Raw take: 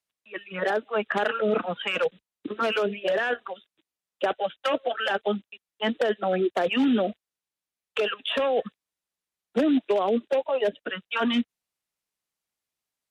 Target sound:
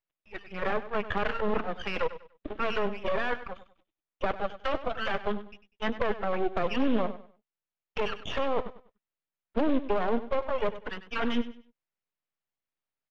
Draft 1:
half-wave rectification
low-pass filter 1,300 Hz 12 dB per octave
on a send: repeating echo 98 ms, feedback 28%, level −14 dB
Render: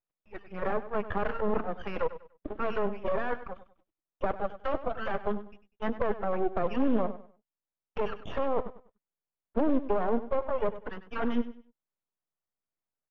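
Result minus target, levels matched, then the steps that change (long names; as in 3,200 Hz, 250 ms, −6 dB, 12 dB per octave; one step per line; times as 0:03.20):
2,000 Hz band −5.0 dB
change: low-pass filter 2,800 Hz 12 dB per octave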